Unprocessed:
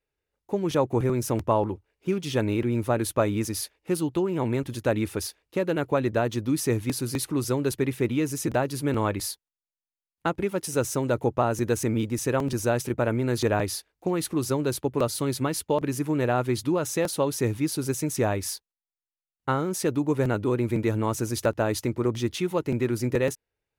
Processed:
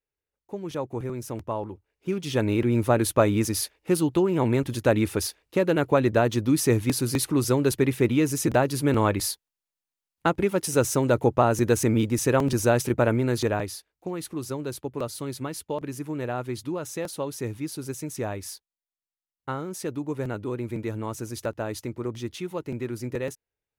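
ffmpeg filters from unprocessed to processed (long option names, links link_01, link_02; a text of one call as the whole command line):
ffmpeg -i in.wav -af "volume=3.5dB,afade=type=in:start_time=1.71:duration=1.08:silence=0.281838,afade=type=out:start_time=13.03:duration=0.72:silence=0.334965" out.wav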